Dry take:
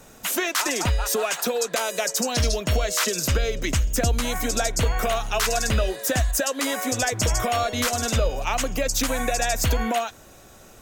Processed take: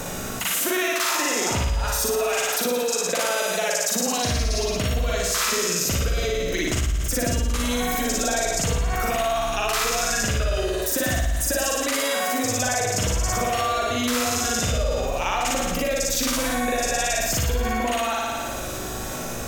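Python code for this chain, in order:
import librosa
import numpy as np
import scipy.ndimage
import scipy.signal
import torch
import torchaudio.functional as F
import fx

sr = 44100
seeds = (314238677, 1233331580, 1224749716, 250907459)

p1 = fx.stretch_grains(x, sr, factor=1.8, grain_ms=184.0)
p2 = p1 + fx.room_flutter(p1, sr, wall_m=9.8, rt60_s=1.1, dry=0)
p3 = fx.env_flatten(p2, sr, amount_pct=70)
y = p3 * 10.0 ** (-6.5 / 20.0)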